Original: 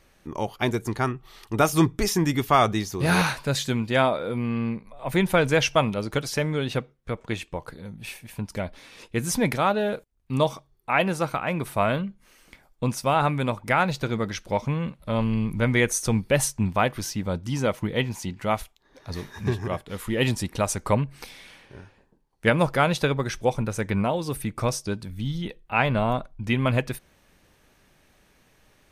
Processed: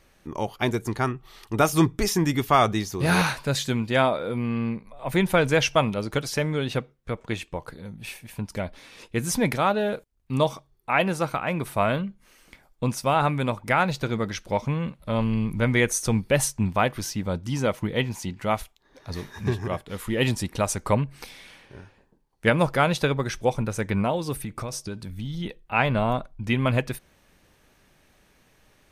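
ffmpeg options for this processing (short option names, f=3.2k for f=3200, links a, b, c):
-filter_complex "[0:a]asettb=1/sr,asplit=3[a][b][c];[a]atrim=end=24.364[d];[b]atrim=start=24.36:end=25.4,asetpts=PTS-STARTPTS,afade=t=in:d=0.004:c=qsin,afade=t=out:st=1.036:d=0.004:c=qsin,acompressor=threshold=-27dB:ratio=12:attack=3.2:release=140:knee=1:detection=peak[e];[c]atrim=start=25.396[f];[d][e]acrossfade=d=0.004:c1=hsin:c2=qsin[g];[g][f]acrossfade=d=0.004:c1=qsin:c2=hsin"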